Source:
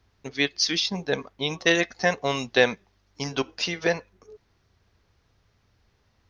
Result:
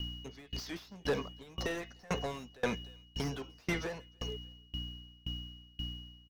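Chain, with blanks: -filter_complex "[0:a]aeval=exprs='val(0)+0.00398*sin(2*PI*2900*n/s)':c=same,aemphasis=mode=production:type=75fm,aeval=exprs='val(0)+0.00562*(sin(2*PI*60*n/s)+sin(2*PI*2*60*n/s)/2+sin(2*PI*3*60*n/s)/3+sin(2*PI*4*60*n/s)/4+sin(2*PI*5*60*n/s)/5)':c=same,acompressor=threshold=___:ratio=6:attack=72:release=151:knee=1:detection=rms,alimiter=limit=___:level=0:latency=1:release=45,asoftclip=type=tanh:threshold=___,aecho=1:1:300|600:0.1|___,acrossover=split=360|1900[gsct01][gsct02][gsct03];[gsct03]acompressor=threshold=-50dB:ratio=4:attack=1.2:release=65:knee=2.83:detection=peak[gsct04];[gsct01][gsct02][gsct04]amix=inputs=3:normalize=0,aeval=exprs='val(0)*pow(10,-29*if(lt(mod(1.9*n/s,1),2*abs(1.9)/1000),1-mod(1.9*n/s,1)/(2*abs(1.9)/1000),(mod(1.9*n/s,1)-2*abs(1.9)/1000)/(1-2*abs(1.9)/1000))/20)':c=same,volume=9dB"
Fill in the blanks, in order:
-25dB, -15.5dB, -31.5dB, 0.027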